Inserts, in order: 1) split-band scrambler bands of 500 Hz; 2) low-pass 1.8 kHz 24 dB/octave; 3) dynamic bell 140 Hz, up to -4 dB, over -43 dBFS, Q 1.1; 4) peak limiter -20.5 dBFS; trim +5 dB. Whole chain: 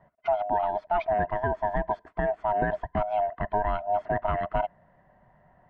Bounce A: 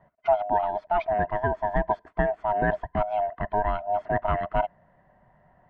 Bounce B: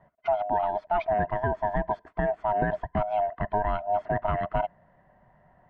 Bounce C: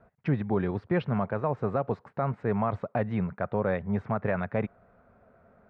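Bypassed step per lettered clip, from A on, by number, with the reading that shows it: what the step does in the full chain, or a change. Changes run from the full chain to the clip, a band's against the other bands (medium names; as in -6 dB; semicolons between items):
4, crest factor change +6.0 dB; 3, 125 Hz band +2.5 dB; 1, 250 Hz band +11.5 dB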